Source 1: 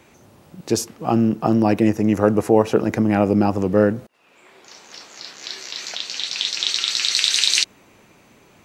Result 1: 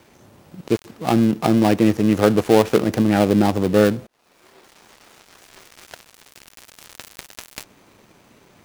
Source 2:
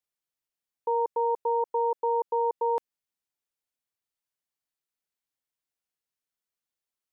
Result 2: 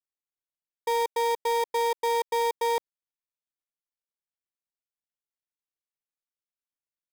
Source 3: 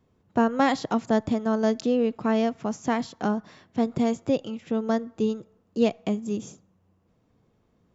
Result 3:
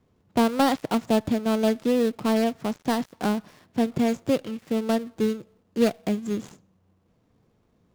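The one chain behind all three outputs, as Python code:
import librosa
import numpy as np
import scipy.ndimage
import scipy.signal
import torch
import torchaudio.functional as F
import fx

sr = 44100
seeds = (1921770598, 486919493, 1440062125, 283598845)

y = fx.dead_time(x, sr, dead_ms=0.18)
y = F.gain(torch.from_numpy(y), 1.0).numpy()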